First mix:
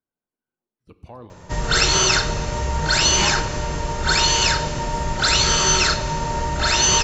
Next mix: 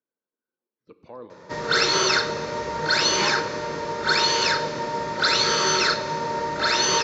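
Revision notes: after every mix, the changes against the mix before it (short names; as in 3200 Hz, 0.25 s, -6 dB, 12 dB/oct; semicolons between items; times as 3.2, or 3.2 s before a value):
master: add speaker cabinet 250–5100 Hz, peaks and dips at 490 Hz +5 dB, 740 Hz -7 dB, 2900 Hz -9 dB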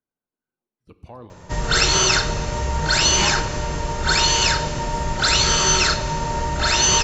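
master: remove speaker cabinet 250–5100 Hz, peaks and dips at 490 Hz +5 dB, 740 Hz -7 dB, 2900 Hz -9 dB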